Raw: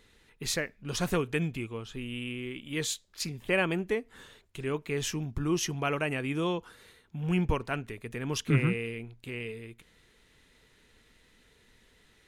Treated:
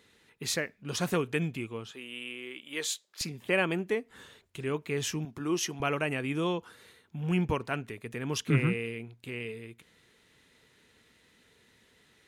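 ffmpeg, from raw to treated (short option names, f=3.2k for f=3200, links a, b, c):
-af "asetnsamples=n=441:p=0,asendcmd='1.91 highpass f 430;3.21 highpass f 140;4.1 highpass f 63;5.25 highpass f 230;5.8 highpass f 93',highpass=110"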